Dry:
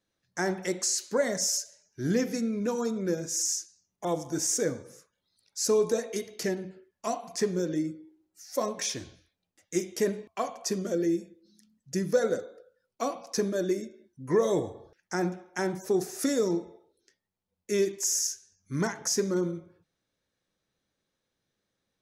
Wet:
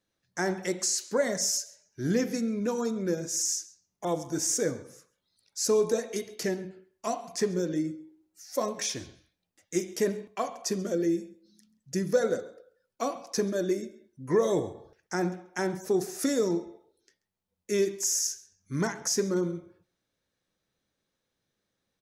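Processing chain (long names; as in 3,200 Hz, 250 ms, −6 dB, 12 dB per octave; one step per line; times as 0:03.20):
slap from a distant wall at 23 metres, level −21 dB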